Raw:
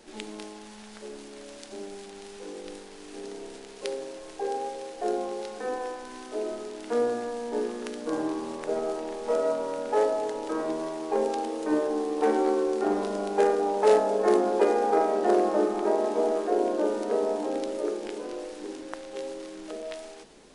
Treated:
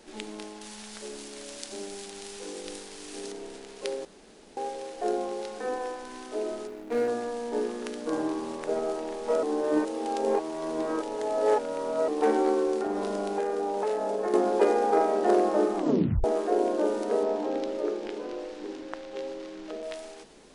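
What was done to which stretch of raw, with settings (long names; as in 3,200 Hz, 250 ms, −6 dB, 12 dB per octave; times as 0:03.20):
0:00.61–0:03.32: high-shelf EQ 3,100 Hz +9.5 dB
0:04.05–0:04.57: fill with room tone
0:06.67–0:07.08: running median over 41 samples
0:09.43–0:12.08: reverse
0:12.77–0:14.34: downward compressor, threshold −25 dBFS
0:15.76: tape stop 0.48 s
0:17.23–0:19.83: low-pass filter 5,100 Hz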